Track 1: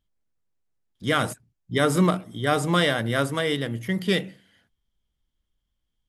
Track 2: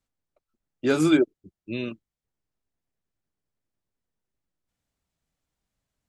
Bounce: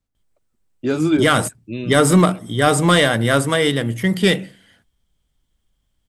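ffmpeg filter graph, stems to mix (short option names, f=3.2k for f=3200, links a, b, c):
-filter_complex "[0:a]equalizer=f=8.3k:w=4.6:g=7.5,adelay=150,volume=1.5dB[a];[1:a]lowshelf=f=290:g=9,volume=-8dB[b];[a][b]amix=inputs=2:normalize=0,acontrast=69"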